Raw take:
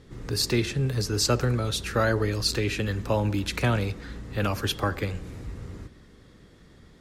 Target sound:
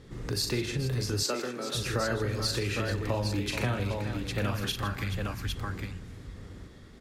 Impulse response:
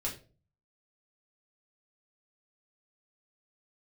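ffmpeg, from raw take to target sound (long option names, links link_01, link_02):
-filter_complex "[0:a]asettb=1/sr,asplit=3[link_01][link_02][link_03];[link_01]atrim=end=4.514[link_04];[link_02]atrim=start=4.51:end=5.56,asetpts=PTS-STARTPTS,afade=type=in:duration=0.004:curve=qsin,afade=type=out:start_time=1.046:duration=0.004:curve=qsin,equalizer=frequency=490:width_type=o:width=0.99:gain=-15[link_05];[link_03]atrim=start=5.556[link_06];[link_04][link_05]acrossfade=duration=0.004:curve1=hsin:curve2=qsin[link_07];[link_07][link_06]acrossfade=duration=0.004:curve1=qsin:curve2=hsin,aecho=1:1:40|158|429|806:0.473|0.2|0.211|0.473,acompressor=threshold=-29dB:ratio=2.5,asettb=1/sr,asplit=3[link_08][link_09][link_10];[link_08]atrim=end=1.234[link_11];[link_09]atrim=start=1.23:end=1.75,asetpts=PTS-STARTPTS,afade=type=in:duration=0.004:curve=qsin,afade=type=out:start_time=0.516:duration=0.004:curve=qsin,highpass=frequency=240:width=0.5412,highpass=frequency=240:width=1.3066[link_12];[link_10]atrim=start=1.746[link_13];[link_11][link_12]acrossfade=duration=0.004:curve1=hsin:curve2=qsin[link_14];[link_14][link_13]acrossfade=duration=0.004:curve1=qsin:curve2=hsin"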